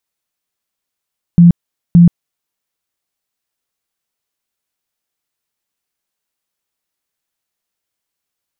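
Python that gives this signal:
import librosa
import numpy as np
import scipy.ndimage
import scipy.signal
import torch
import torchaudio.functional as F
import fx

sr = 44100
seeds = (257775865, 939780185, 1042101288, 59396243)

y = fx.tone_burst(sr, hz=172.0, cycles=22, every_s=0.57, bursts=2, level_db=-1.5)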